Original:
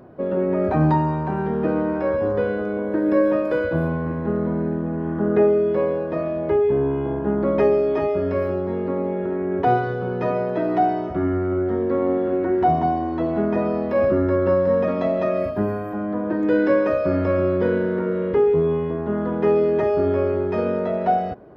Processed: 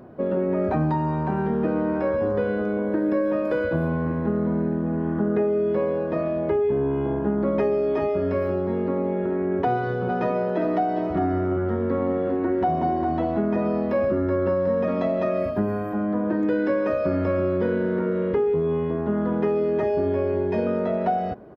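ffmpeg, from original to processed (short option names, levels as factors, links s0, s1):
-filter_complex "[0:a]asplit=3[s0][s1][s2];[s0]afade=t=out:st=10.08:d=0.02[s3];[s1]aecho=1:1:404:0.422,afade=t=in:st=10.08:d=0.02,afade=t=out:st=13.35:d=0.02[s4];[s2]afade=t=in:st=13.35:d=0.02[s5];[s3][s4][s5]amix=inputs=3:normalize=0,asettb=1/sr,asplit=3[s6][s7][s8];[s6]atrim=end=19.834[s9];[s7]atrim=start=19.83:end=20.67,asetpts=PTS-STARTPTS,afade=t=in:d=0.004:c=qsin,afade=t=out:st=0.836:d=0.004:c=qsin,asuperstop=centerf=1300:order=12:qfactor=6.5[s10];[s8]atrim=start=20.666[s11];[s9][s10]acrossfade=d=0.004:c1=hsin:c2=qsin[s12];[s12][s11]acrossfade=d=0.004:c1=qsin:c2=hsin,equalizer=f=220:w=5.1:g=4.5,acompressor=threshold=0.112:ratio=6"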